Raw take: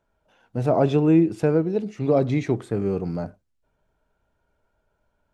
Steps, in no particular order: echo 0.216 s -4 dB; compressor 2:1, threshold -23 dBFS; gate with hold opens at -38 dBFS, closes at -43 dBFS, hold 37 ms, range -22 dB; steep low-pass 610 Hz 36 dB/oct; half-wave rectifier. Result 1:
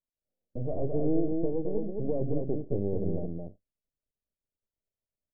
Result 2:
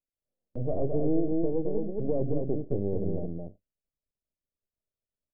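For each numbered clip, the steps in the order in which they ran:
compressor > half-wave rectifier > echo > gate with hold > steep low-pass; half-wave rectifier > steep low-pass > gate with hold > echo > compressor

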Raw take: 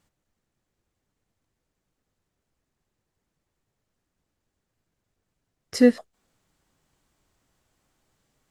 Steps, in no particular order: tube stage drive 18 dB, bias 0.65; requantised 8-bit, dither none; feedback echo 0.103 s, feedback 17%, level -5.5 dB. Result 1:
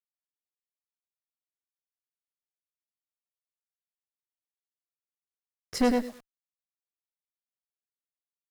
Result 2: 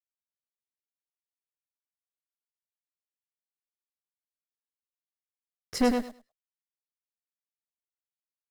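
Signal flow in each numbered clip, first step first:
feedback echo > requantised > tube stage; requantised > tube stage > feedback echo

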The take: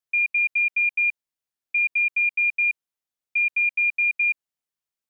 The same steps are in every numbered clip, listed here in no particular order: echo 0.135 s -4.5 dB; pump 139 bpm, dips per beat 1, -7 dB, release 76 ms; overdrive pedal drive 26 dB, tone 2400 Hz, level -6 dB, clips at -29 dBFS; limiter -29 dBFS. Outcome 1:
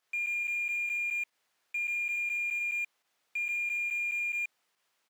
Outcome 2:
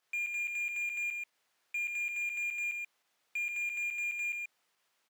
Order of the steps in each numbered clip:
echo > pump > overdrive pedal > limiter; pump > limiter > overdrive pedal > echo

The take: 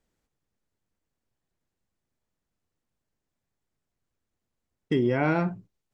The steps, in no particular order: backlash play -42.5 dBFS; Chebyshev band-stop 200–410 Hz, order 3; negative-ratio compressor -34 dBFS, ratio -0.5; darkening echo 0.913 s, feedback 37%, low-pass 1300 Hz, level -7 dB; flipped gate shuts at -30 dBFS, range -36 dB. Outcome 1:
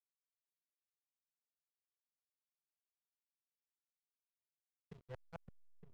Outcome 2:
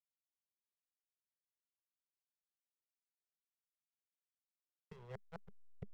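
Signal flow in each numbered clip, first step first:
negative-ratio compressor > flipped gate > Chebyshev band-stop > backlash > darkening echo; darkening echo > negative-ratio compressor > flipped gate > backlash > Chebyshev band-stop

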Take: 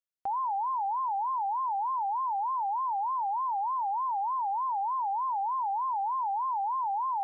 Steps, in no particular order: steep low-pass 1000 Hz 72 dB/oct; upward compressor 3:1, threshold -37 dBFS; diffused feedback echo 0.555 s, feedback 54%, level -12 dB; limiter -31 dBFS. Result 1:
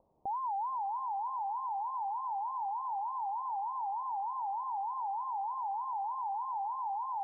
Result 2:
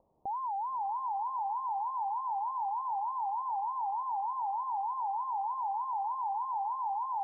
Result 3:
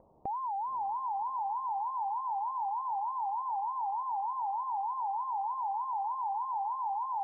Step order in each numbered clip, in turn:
diffused feedback echo > upward compressor > steep low-pass > limiter; upward compressor > steep low-pass > limiter > diffused feedback echo; steep low-pass > limiter > upward compressor > diffused feedback echo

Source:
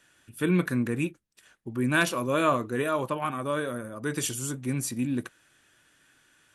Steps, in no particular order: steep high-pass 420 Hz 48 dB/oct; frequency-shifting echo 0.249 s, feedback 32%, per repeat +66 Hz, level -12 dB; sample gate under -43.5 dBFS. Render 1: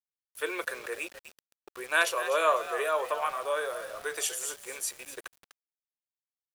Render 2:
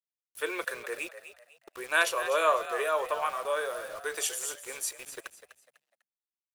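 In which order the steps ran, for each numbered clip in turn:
steep high-pass > frequency-shifting echo > sample gate; steep high-pass > sample gate > frequency-shifting echo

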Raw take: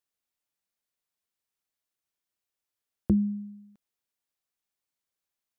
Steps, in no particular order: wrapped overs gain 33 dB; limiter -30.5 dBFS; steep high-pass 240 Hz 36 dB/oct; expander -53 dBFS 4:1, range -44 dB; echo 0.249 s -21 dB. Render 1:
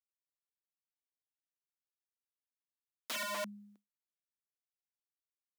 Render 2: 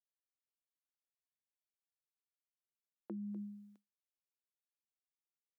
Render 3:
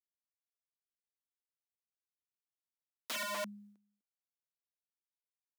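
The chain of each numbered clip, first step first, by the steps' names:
echo > expander > wrapped overs > limiter > steep high-pass; echo > limiter > expander > steep high-pass > wrapped overs; expander > echo > wrapped overs > limiter > steep high-pass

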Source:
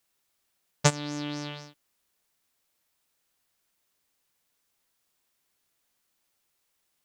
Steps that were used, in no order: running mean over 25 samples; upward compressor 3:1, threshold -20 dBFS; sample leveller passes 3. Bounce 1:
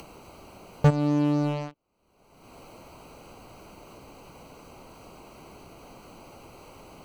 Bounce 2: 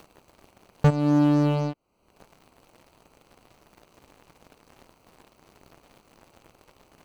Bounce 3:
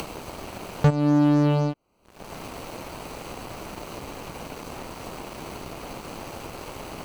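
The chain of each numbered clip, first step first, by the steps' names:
running mean > sample leveller > upward compressor; upward compressor > running mean > sample leveller; running mean > upward compressor > sample leveller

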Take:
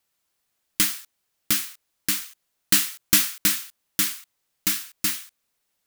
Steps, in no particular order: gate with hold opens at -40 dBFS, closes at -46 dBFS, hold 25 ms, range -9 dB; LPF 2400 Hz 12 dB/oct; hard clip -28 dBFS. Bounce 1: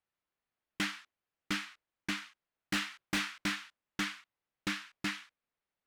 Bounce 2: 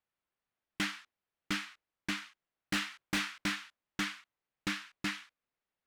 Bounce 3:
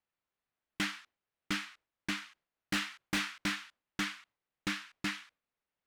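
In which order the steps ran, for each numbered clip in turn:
LPF > hard clip > gate with hold; LPF > gate with hold > hard clip; gate with hold > LPF > hard clip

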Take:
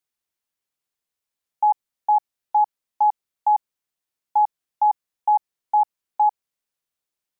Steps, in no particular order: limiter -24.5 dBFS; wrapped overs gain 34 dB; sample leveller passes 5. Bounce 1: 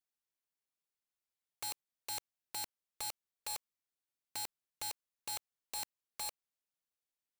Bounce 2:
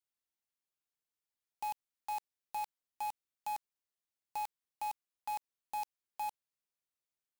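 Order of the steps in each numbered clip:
sample leveller > wrapped overs > limiter; limiter > sample leveller > wrapped overs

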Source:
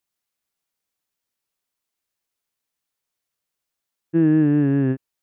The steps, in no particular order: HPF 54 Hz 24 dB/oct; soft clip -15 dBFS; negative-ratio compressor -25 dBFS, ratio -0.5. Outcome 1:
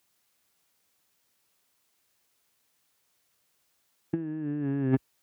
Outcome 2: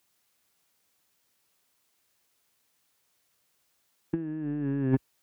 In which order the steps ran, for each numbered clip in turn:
negative-ratio compressor > soft clip > HPF; HPF > negative-ratio compressor > soft clip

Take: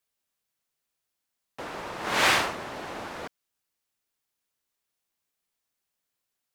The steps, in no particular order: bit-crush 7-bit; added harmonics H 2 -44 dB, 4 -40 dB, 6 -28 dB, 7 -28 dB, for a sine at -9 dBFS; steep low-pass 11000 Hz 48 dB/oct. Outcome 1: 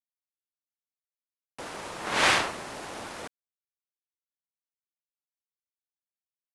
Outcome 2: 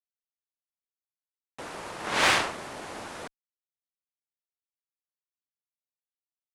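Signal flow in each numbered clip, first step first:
added harmonics > bit-crush > steep low-pass; bit-crush > steep low-pass > added harmonics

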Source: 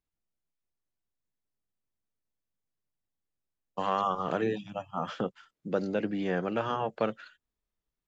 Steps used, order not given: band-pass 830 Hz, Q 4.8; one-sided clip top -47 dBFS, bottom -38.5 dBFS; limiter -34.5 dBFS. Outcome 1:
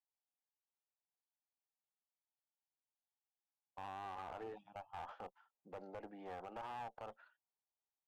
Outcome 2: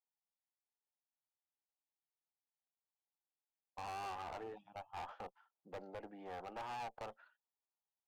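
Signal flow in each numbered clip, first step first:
band-pass > limiter > one-sided clip; band-pass > one-sided clip > limiter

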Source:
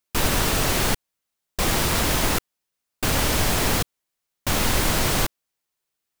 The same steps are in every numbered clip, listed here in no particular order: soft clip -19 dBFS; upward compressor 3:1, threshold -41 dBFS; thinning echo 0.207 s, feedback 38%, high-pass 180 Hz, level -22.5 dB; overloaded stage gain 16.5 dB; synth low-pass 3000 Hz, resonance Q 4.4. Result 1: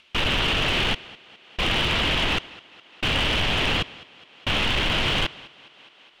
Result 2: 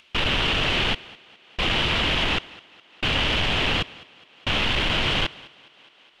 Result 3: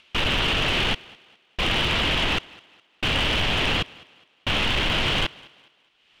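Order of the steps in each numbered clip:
thinning echo > soft clip > upward compressor > synth low-pass > overloaded stage; overloaded stage > thinning echo > soft clip > synth low-pass > upward compressor; upward compressor > soft clip > synth low-pass > overloaded stage > thinning echo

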